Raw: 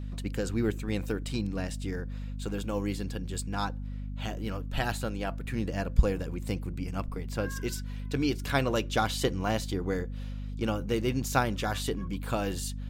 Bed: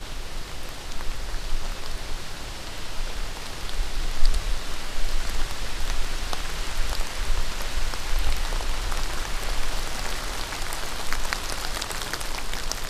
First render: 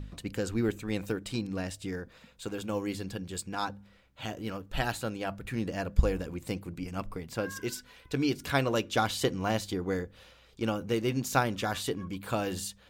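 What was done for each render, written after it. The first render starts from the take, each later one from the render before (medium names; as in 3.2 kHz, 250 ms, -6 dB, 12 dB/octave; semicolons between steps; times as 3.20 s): de-hum 50 Hz, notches 5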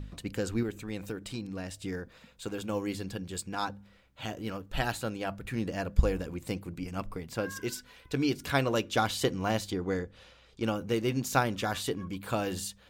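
0.63–1.77 s: compression 1.5:1, threshold -40 dBFS; 9.70–10.63 s: low-pass 8.9 kHz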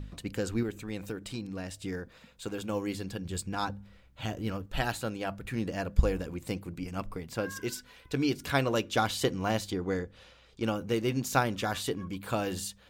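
3.25–4.66 s: bass shelf 130 Hz +10.5 dB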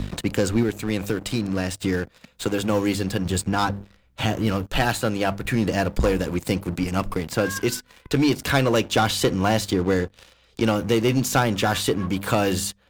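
waveshaping leveller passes 3; three bands compressed up and down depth 40%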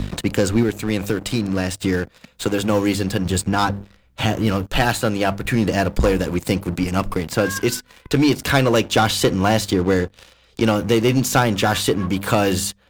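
trim +3.5 dB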